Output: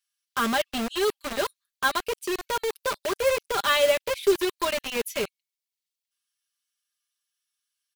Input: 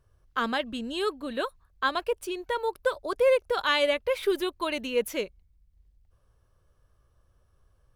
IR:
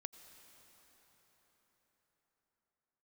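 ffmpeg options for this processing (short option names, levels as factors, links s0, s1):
-filter_complex "[0:a]aecho=1:1:5:0.82,acrossover=split=2300[s0][s1];[s0]acrusher=bits=4:mix=0:aa=0.000001[s2];[s2][s1]amix=inputs=2:normalize=0"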